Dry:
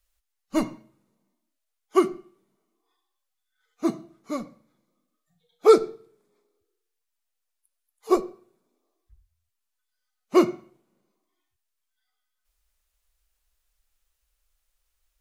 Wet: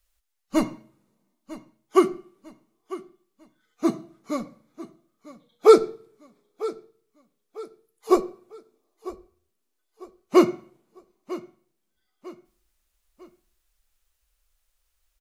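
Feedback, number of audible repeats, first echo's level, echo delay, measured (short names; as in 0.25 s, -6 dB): 39%, 3, -17.0 dB, 0.949 s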